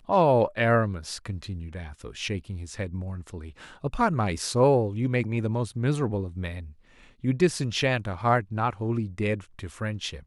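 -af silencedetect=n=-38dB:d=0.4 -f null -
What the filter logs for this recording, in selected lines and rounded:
silence_start: 6.70
silence_end: 7.24 | silence_duration: 0.54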